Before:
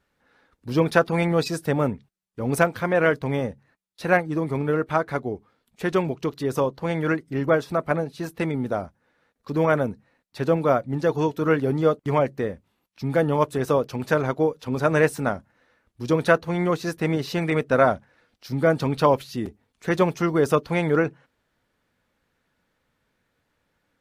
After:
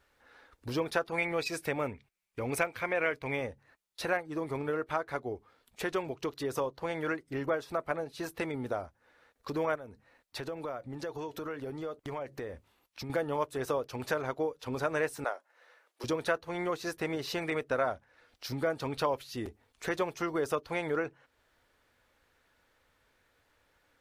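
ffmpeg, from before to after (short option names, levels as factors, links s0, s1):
-filter_complex "[0:a]asettb=1/sr,asplit=3[s0][s1][s2];[s0]atrim=end=1.184[s3];[s1]atrim=start=1.18:end=3.47,asetpts=PTS-STARTPTS,afade=t=in:d=0.004:c=qsin,afade=t=out:st=2.286:d=0.004:c=qsin,equalizer=f=2300:w=3.8:g=11.5[s4];[s2]atrim=start=3.466[s5];[s3][s4]acrossfade=d=0.004:c1=hsin:c2=qsin[s6];[s6][s5]acrossfade=d=0.004:c1=qsin:c2=hsin,asettb=1/sr,asplit=3[s7][s8][s9];[s7]atrim=end=9.754[s10];[s8]atrim=start=9.75:end=13.1,asetpts=PTS-STARTPTS,afade=t=in:d=0.004:c=qsin,afade=t=out:st=3.346:d=0.004:c=qsin,acompressor=threshold=0.0224:ratio=4:attack=3.2:release=140:knee=1:detection=peak[s11];[s9]atrim=start=13.096[s12];[s10][s11]acrossfade=d=0.004:c1=hsin:c2=qsin[s13];[s13][s12]acrossfade=d=0.004:c1=qsin:c2=hsin,asettb=1/sr,asplit=3[s14][s15][s16];[s14]atrim=end=15.244[s17];[s15]atrim=start=15.24:end=16.04,asetpts=PTS-STARTPTS,afade=t=in:d=0.004:c=qsin,afade=t=out:st=0.796:d=0.004:c=qsin,highpass=f=420:w=0.5412,highpass=f=420:w=1.3066[s18];[s16]atrim=start=16.036[s19];[s17][s18]acrossfade=d=0.004:c1=hsin:c2=qsin[s20];[s20][s19]acrossfade=d=0.004:c1=qsin:c2=hsin,equalizer=f=180:t=o:w=1.2:g=-12,acompressor=threshold=0.00794:ratio=2,volume=1.5"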